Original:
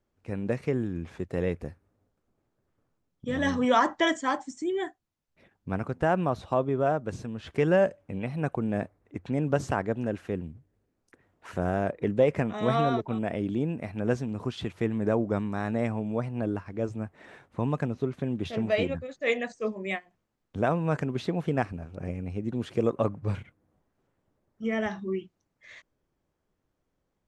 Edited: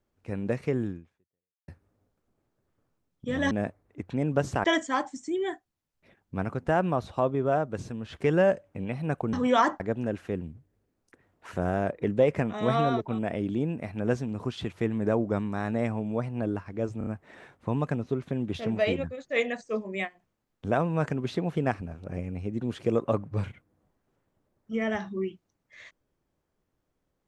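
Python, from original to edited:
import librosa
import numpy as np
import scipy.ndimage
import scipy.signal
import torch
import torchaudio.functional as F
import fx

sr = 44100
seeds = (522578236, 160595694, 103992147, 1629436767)

y = fx.edit(x, sr, fx.fade_out_span(start_s=0.9, length_s=0.78, curve='exp'),
    fx.swap(start_s=3.51, length_s=0.47, other_s=8.67, other_length_s=1.13),
    fx.stutter(start_s=16.98, slice_s=0.03, count=4), tone=tone)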